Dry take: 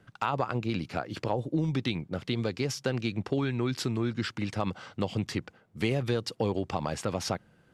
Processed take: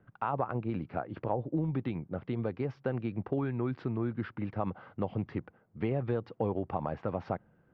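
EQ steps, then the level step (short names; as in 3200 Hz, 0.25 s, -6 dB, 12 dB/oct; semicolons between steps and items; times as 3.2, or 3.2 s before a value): LPF 1600 Hz 12 dB/oct; dynamic EQ 760 Hz, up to +3 dB, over -43 dBFS, Q 1.5; air absorption 170 m; -3.0 dB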